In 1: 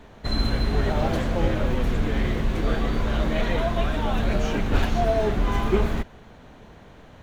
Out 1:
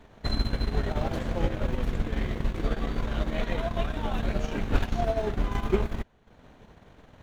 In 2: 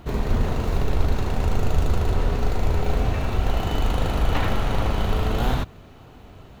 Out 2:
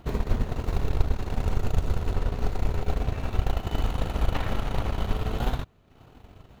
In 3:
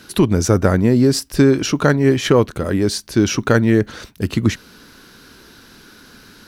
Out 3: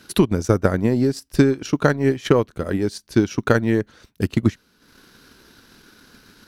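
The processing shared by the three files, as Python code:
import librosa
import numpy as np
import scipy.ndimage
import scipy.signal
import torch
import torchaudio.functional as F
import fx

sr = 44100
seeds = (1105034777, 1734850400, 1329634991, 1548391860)

y = fx.transient(x, sr, attack_db=6, sustain_db=-10)
y = F.gain(torch.from_numpy(y), -6.0).numpy()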